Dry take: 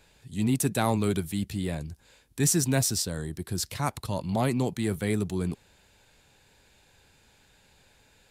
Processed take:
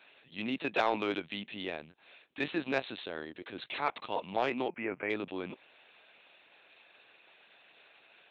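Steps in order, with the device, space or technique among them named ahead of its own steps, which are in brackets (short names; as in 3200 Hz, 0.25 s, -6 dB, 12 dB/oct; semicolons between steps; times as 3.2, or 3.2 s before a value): talking toy (LPC vocoder at 8 kHz pitch kept; HPF 450 Hz 12 dB/oct; bell 2600 Hz +6 dB 0.48 oct; soft clip -17 dBFS, distortion -20 dB); 4.68–5.1 elliptic low-pass 2500 Hz, stop band 40 dB; gain +1 dB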